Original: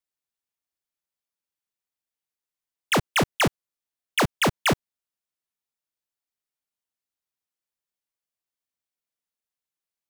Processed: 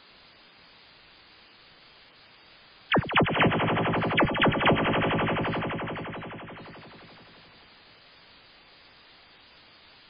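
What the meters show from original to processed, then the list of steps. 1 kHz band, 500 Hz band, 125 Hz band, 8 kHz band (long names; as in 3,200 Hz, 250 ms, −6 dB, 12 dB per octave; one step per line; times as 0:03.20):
+3.0 dB, +3.0 dB, +3.0 dB, below −40 dB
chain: echo that builds up and dies away 86 ms, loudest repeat 5, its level −8 dB
gate on every frequency bin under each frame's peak −10 dB strong
bit-depth reduction 8 bits, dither triangular
MP3 16 kbit/s 11,025 Hz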